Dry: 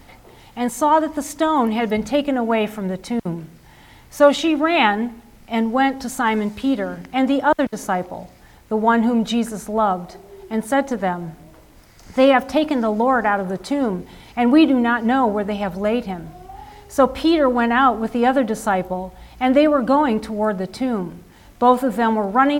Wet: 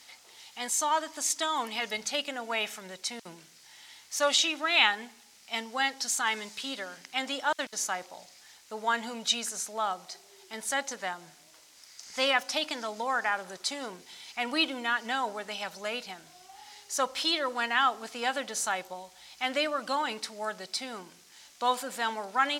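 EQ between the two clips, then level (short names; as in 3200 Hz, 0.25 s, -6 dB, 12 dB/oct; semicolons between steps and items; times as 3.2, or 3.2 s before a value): band-pass 5800 Hz, Q 1.2; +6.0 dB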